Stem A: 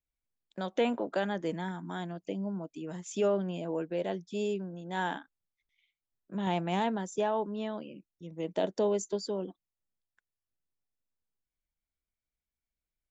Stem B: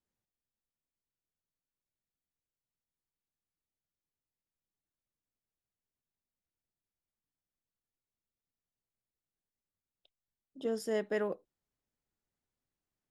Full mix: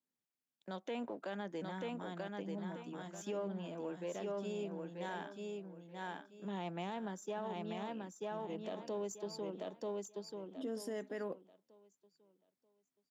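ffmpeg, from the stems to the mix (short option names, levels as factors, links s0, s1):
-filter_complex "[0:a]aeval=exprs='if(lt(val(0),0),0.708*val(0),val(0))':c=same,adelay=100,volume=0.447,asplit=2[s0][s1];[s1]volume=0.631[s2];[1:a]equalizer=f=260:w=7.6:g=11.5,volume=0.596[s3];[s2]aecho=0:1:936|1872|2808|3744:1|0.24|0.0576|0.0138[s4];[s0][s3][s4]amix=inputs=3:normalize=0,highpass=f=130:w=0.5412,highpass=f=130:w=1.3066,alimiter=level_in=2.66:limit=0.0631:level=0:latency=1:release=79,volume=0.376"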